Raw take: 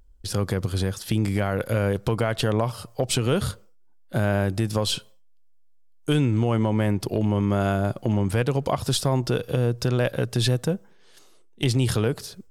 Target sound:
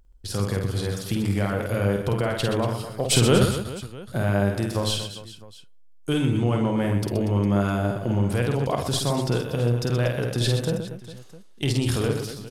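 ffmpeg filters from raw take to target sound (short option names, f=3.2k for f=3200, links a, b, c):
-filter_complex "[0:a]asettb=1/sr,asplit=3[a][b][c];[a]atrim=end=3.054[d];[b]atrim=start=3.05:end=3.46,asetpts=PTS-STARTPTS,afade=t=in:d=0.004:c=qsin,afade=t=out:st=0.406:d=0.004:c=qsin,acontrast=59[e];[c]atrim=start=3.456[f];[d][e]acrossfade=d=0.004:c1=hsin:c2=qsin[g];[g][f]acrossfade=d=0.004:c1=qsin:c2=hsin,aecho=1:1:50|125|237.5|406.2|659.4:0.631|0.398|0.251|0.158|0.1,volume=-2.5dB"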